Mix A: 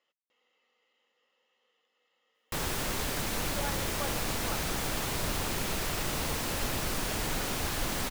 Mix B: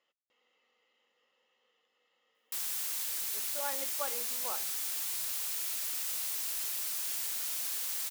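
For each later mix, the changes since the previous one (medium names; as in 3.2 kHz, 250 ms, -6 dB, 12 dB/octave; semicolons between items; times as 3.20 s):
background: add differentiator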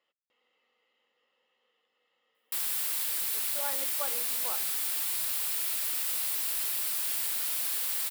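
background +5.0 dB; master: add peaking EQ 6.3 kHz -7.5 dB 0.5 oct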